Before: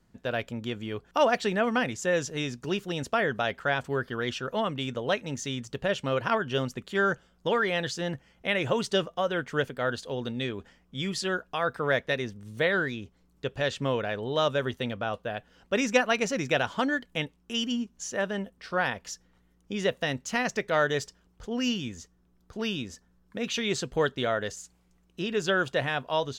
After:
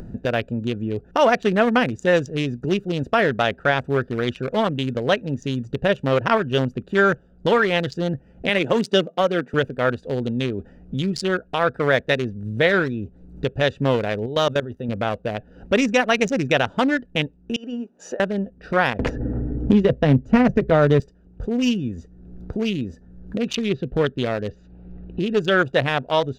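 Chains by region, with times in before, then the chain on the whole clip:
8.49–9.54 s: high-pass 180 Hz 24 dB/octave + tone controls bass +3 dB, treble +2 dB
14.26–14.89 s: treble shelf 7.7 kHz +9 dB + band-stop 2.4 kHz, Q 27 + level held to a coarse grid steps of 13 dB
17.56–18.20 s: Chebyshev high-pass 590 Hz + treble shelf 2.4 kHz -5.5 dB + compressor with a negative ratio -39 dBFS
18.99–21.00 s: tilt EQ -4 dB/octave + comb of notches 180 Hz + three bands compressed up and down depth 100%
23.55–25.20 s: low-pass 3.9 kHz 24 dB/octave + dynamic bell 970 Hz, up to -7 dB, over -40 dBFS, Q 0.81
whole clip: local Wiener filter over 41 samples; upward compressor, threshold -30 dBFS; loudness maximiser +15 dB; trim -5.5 dB

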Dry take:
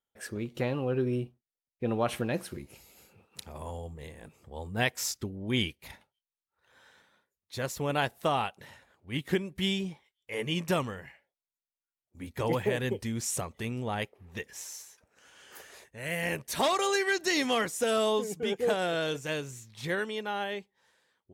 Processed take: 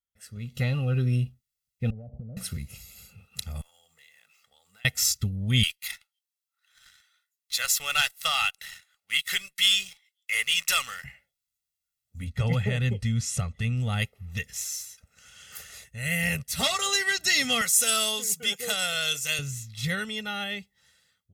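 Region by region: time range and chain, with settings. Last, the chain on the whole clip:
1.90–2.37 s: steep low-pass 690 Hz 48 dB/octave + compression 16:1, threshold -41 dBFS
3.61–4.85 s: median filter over 5 samples + high-pass 1.2 kHz + compression 5:1, threshold -59 dBFS
5.63–11.04 s: high-pass 1.3 kHz + waveshaping leveller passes 2
12.24–13.80 s: low-pass 10 kHz + treble shelf 4.2 kHz -9.5 dB
16.43–16.86 s: doubling 12 ms -7.5 dB + upward expansion, over -38 dBFS
17.61–19.39 s: high-pass 690 Hz 6 dB/octave + treble shelf 4.5 kHz +9.5 dB
whole clip: amplifier tone stack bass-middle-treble 6-0-2; level rider gain up to 15 dB; comb 1.5 ms, depth 88%; trim +6.5 dB

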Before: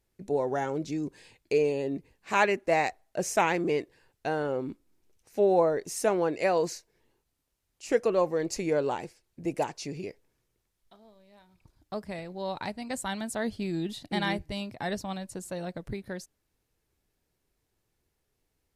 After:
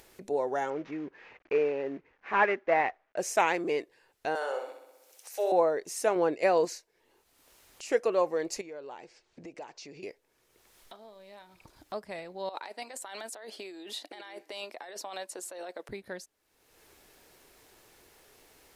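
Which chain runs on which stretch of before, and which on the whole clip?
0.70–3.17 s: CVSD coder 32 kbps + resonant high shelf 3 kHz -13.5 dB, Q 1.5
4.35–5.52 s: high-pass 500 Hz 24 dB/octave + treble shelf 4.6 kHz +11.5 dB + flutter echo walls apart 10.9 m, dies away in 0.68 s
6.15–6.65 s: gate -34 dBFS, range -6 dB + bass shelf 330 Hz +8 dB
8.61–10.03 s: low-pass 6.8 kHz 24 dB/octave + compression 2:1, threshold -50 dBFS
12.49–15.89 s: high-pass 330 Hz 24 dB/octave + compressor with a negative ratio -41 dBFS
whole clip: tone controls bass -15 dB, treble -2 dB; upward compressor, threshold -40 dBFS

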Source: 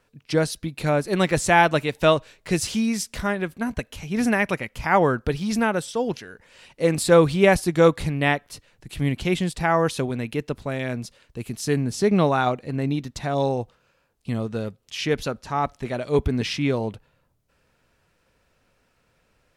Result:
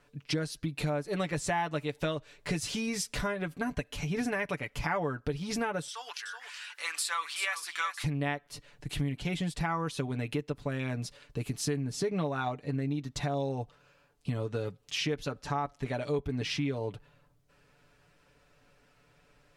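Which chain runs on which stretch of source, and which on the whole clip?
5.88–8.04 s: Chebyshev high-pass 1.2 kHz, order 3 + upward compressor, threshold -37 dBFS + delay 376 ms -10 dB
whole clip: treble shelf 11 kHz -7.5 dB; comb 6.9 ms, depth 67%; compression 5:1, threshold -30 dBFS

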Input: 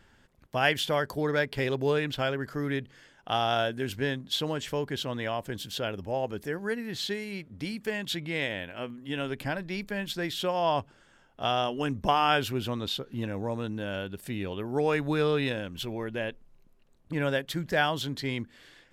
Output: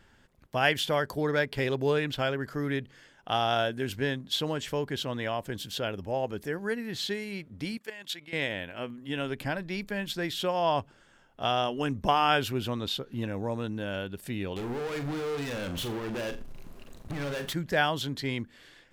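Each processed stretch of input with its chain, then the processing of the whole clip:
7.77–8.33 s: high-pass 810 Hz 6 dB/octave + level held to a coarse grid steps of 11 dB
14.56–17.53 s: compression 5:1, threshold -40 dBFS + waveshaping leveller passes 5 + flutter echo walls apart 7.2 m, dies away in 0.28 s
whole clip: none

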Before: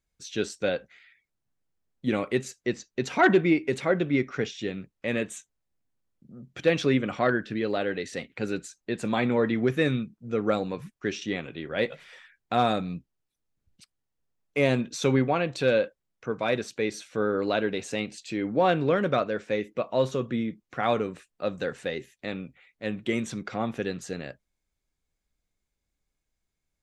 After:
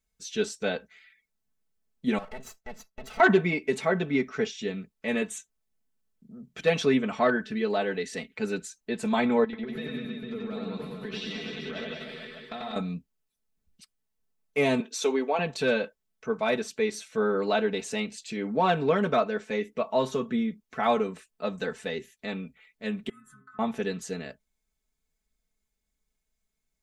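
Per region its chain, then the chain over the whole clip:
2.18–3.20 s: comb filter that takes the minimum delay 1.5 ms + treble shelf 3.2 kHz -8 dB + compression 2.5:1, threshold -39 dBFS
9.44–12.76 s: resonant high shelf 5.1 kHz -6.5 dB, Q 3 + compression 16:1, threshold -33 dBFS + reverse bouncing-ball echo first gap 90 ms, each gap 1.15×, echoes 6, each echo -2 dB
14.80–15.39 s: high-pass 310 Hz 24 dB/octave + dynamic bell 1.5 kHz, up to -6 dB, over -41 dBFS, Q 1.1
23.09–23.59 s: FFT filter 200 Hz 0 dB, 660 Hz -28 dB, 1.3 kHz +15 dB, 2.3 kHz -16 dB, 5.8 kHz -18 dB, 9.6 kHz +4 dB + compression 4:1, threshold -35 dBFS + inharmonic resonator 130 Hz, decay 0.36 s, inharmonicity 0.008
whole clip: treble shelf 6.2 kHz +5 dB; comb 4.6 ms, depth 90%; dynamic bell 850 Hz, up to +6 dB, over -41 dBFS, Q 2.3; trim -3.5 dB

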